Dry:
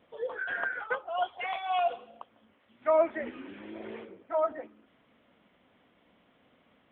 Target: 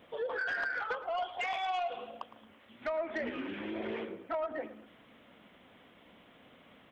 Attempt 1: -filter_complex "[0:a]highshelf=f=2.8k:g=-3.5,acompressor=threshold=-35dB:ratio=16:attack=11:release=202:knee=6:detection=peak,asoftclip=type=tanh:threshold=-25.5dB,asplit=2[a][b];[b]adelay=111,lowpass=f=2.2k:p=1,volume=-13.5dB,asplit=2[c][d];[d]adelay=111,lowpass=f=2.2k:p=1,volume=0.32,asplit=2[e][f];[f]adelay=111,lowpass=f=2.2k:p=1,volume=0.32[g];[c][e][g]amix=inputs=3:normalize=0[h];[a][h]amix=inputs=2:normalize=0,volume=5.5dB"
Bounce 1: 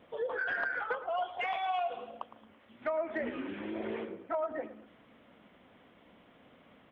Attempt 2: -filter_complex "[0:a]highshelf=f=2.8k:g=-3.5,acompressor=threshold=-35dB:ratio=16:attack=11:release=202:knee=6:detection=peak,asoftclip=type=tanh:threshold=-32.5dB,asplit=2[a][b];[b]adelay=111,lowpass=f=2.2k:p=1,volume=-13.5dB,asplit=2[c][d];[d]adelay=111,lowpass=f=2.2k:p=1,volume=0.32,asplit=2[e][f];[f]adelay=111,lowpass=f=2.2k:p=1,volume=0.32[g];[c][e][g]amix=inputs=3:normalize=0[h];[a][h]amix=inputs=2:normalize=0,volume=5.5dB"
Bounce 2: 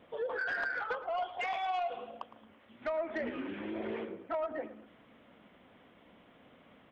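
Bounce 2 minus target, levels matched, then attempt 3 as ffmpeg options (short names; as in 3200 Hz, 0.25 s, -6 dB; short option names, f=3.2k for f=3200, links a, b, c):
4000 Hz band -3.5 dB
-filter_complex "[0:a]highshelf=f=2.8k:g=5,acompressor=threshold=-35dB:ratio=16:attack=11:release=202:knee=6:detection=peak,asoftclip=type=tanh:threshold=-32.5dB,asplit=2[a][b];[b]adelay=111,lowpass=f=2.2k:p=1,volume=-13.5dB,asplit=2[c][d];[d]adelay=111,lowpass=f=2.2k:p=1,volume=0.32,asplit=2[e][f];[f]adelay=111,lowpass=f=2.2k:p=1,volume=0.32[g];[c][e][g]amix=inputs=3:normalize=0[h];[a][h]amix=inputs=2:normalize=0,volume=5.5dB"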